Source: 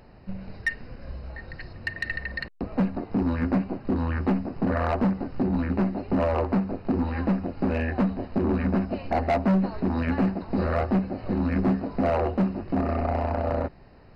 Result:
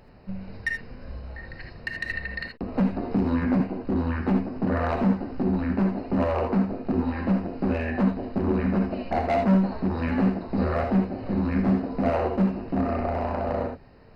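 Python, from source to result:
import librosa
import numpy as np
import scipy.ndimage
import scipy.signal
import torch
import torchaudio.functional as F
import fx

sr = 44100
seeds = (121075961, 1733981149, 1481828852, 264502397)

y = fx.rev_gated(x, sr, seeds[0], gate_ms=100, shape='rising', drr_db=3.5)
y = fx.band_squash(y, sr, depth_pct=70, at=(2.74, 3.6))
y = y * librosa.db_to_amplitude(-1.5)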